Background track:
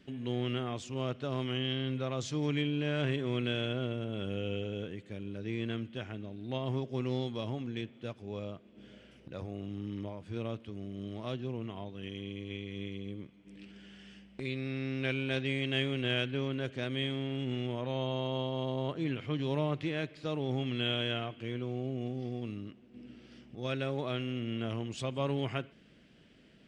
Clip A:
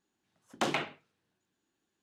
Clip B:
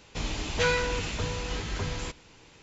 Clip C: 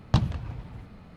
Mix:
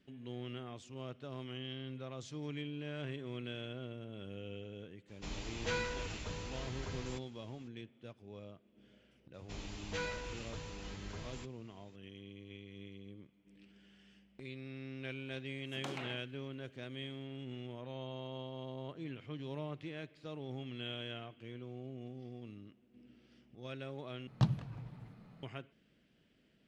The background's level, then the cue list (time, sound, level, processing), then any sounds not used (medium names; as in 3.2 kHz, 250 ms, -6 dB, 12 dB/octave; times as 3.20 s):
background track -10.5 dB
5.07 s: add B -11.5 dB, fades 0.02 s
9.34 s: add B -14.5 dB
15.23 s: add A + compression, threshold -41 dBFS
24.27 s: replace with C -10.5 dB + resonant low shelf 100 Hz -8 dB, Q 3